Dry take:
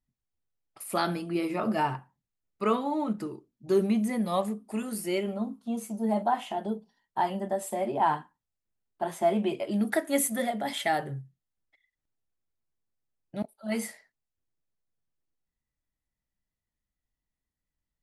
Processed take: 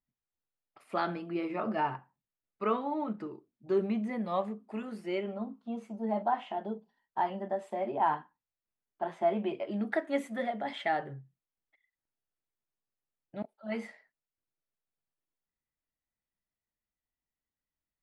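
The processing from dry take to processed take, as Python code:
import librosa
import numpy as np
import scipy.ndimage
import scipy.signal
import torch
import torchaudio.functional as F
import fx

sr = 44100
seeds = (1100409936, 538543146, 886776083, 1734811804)

y = scipy.signal.sosfilt(scipy.signal.butter(2, 2600.0, 'lowpass', fs=sr, output='sos'), x)
y = fx.low_shelf(y, sr, hz=180.0, db=-9.0)
y = y * librosa.db_to_amplitude(-2.5)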